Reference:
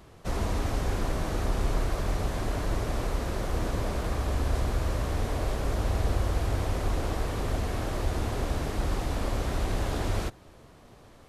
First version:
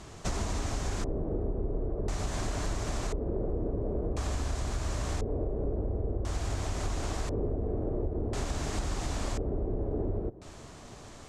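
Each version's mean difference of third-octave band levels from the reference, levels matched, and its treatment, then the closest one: 9.0 dB: high shelf 8500 Hz +4.5 dB; notch 510 Hz, Q 12; compressor 6:1, threshold -34 dBFS, peak gain reduction 12.5 dB; LFO low-pass square 0.48 Hz 450–7200 Hz; gain +5 dB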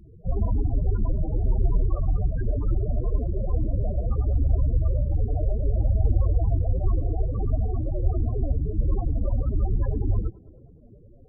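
19.5 dB: dynamic EQ 1700 Hz, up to +6 dB, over -51 dBFS, Q 0.85; modulation noise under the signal 18 dB; loudest bins only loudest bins 8; on a send: tape echo 0.105 s, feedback 86%, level -21.5 dB, low-pass 1200 Hz; on the sum: gain +6.5 dB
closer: first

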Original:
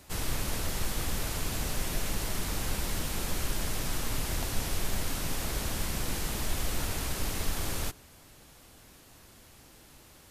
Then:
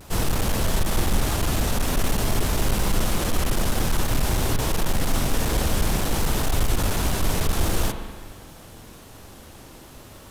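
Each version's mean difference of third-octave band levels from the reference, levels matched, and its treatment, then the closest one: 2.5 dB: vibrato 0.51 Hz 31 cents; in parallel at -3 dB: sample-and-hold 18×; on the sum: hard clip -23 dBFS, distortion -13 dB; spring tank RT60 1.6 s, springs 40/49 ms, chirp 35 ms, DRR 6.5 dB; gain +6.5 dB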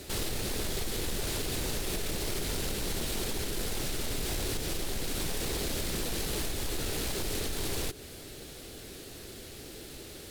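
4.0 dB: compressor 6:1, threshold -35 dBFS, peak gain reduction 12 dB; careless resampling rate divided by 2×, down none, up hold; fifteen-band EQ 400 Hz +10 dB, 1000 Hz -9 dB, 4000 Hz +5 dB; wavefolder -35 dBFS; gain +8 dB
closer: first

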